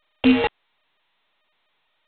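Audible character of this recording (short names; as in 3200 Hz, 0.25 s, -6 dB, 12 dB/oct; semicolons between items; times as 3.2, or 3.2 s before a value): a buzz of ramps at a fixed pitch in blocks of 16 samples; random-step tremolo 4.3 Hz; a quantiser's noise floor 6-bit, dither none; G.726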